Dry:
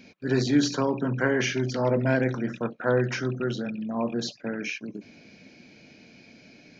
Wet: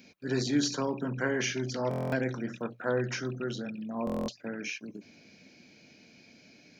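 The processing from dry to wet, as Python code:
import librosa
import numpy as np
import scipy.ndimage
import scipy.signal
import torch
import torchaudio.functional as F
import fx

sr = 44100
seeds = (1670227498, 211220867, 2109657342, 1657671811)

y = scipy.signal.sosfilt(scipy.signal.butter(4, 40.0, 'highpass', fs=sr, output='sos'), x)
y = fx.high_shelf(y, sr, hz=6400.0, db=12.0)
y = fx.hum_notches(y, sr, base_hz=60, count=2)
y = fx.buffer_glitch(y, sr, at_s=(1.89, 4.05), block=1024, repeats=9)
y = y * 10.0 ** (-6.0 / 20.0)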